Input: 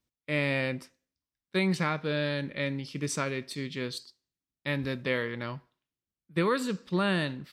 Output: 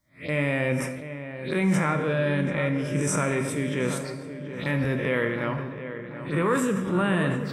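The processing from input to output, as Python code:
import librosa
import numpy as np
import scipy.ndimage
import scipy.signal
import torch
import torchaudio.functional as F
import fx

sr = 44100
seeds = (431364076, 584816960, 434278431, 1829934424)

p1 = fx.spec_swells(x, sr, rise_s=0.35)
p2 = fx.over_compress(p1, sr, threshold_db=-32.0, ratio=-1.0)
p3 = p1 + (p2 * 10.0 ** (-1.0 / 20.0))
p4 = fx.env_phaser(p3, sr, low_hz=440.0, high_hz=4400.0, full_db=-27.0)
p5 = p4 + fx.echo_filtered(p4, sr, ms=730, feedback_pct=67, hz=2200.0, wet_db=-10.5, dry=0)
p6 = fx.rev_plate(p5, sr, seeds[0], rt60_s=1.2, hf_ratio=0.75, predelay_ms=0, drr_db=6.5)
y = fx.sustainer(p6, sr, db_per_s=49.0)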